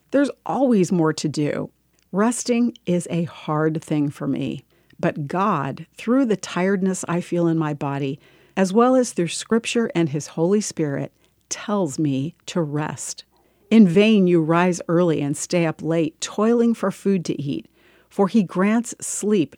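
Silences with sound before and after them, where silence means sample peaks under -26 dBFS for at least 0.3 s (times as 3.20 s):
1.65–2.13 s
4.56–5.03 s
8.14–8.57 s
11.05–11.51 s
13.19–13.72 s
17.58–18.19 s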